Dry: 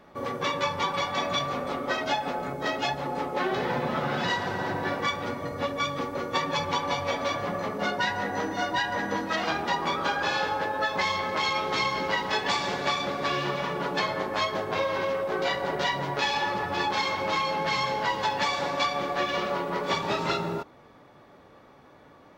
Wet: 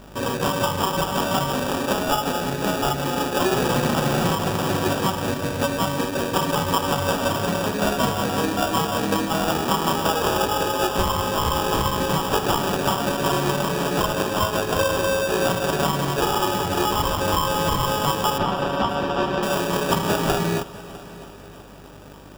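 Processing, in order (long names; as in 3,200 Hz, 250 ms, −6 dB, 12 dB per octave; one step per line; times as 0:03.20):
low-shelf EQ 420 Hz +7 dB
hum with harmonics 50 Hz, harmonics 22, −51 dBFS −4 dB per octave
sample-rate reduction 2,100 Hz, jitter 0%
0:18.38–0:19.43: high-frequency loss of the air 180 metres
echo machine with several playback heads 326 ms, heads first and second, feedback 50%, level −21.5 dB
level +4 dB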